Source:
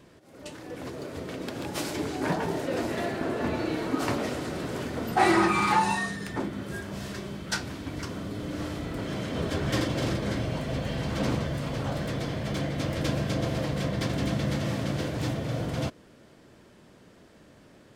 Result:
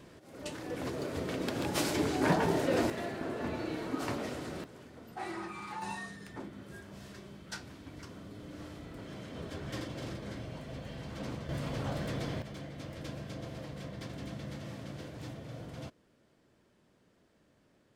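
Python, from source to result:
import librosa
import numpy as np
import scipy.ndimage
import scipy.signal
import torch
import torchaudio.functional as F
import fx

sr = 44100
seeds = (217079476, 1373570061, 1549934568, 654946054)

y = fx.gain(x, sr, db=fx.steps((0.0, 0.5), (2.9, -7.5), (4.64, -19.0), (5.82, -12.5), (11.49, -5.0), (12.42, -14.0)))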